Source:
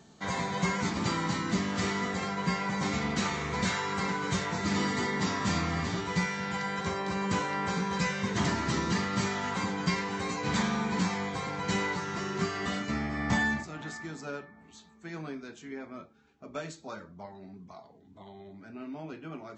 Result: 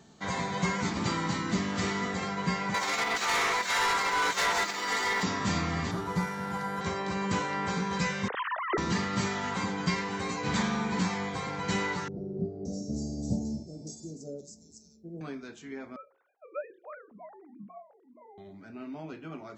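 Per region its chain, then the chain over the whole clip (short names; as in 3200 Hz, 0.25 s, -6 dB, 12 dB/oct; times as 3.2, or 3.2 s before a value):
2.74–5.23 negative-ratio compressor -33 dBFS, ratio -0.5 + HPF 630 Hz + sample leveller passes 3
5.91–6.81 CVSD 64 kbps + resonant high shelf 1700 Hz -6.5 dB, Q 1.5
8.28–8.78 sine-wave speech + high shelf 2200 Hz -12 dB
12.08–15.21 elliptic band-stop 560–5500 Hz + bands offset in time lows, highs 0.57 s, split 2000 Hz
15.96–18.38 sine-wave speech + LPF 1300 Hz 6 dB/oct + notches 60/120/180/240/300/360/420/480/540 Hz
whole clip: dry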